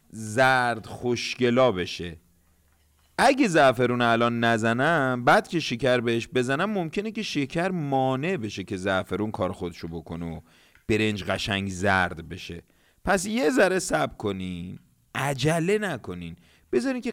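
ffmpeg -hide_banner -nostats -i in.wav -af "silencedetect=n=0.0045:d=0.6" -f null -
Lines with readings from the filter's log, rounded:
silence_start: 2.18
silence_end: 3.18 | silence_duration: 1.01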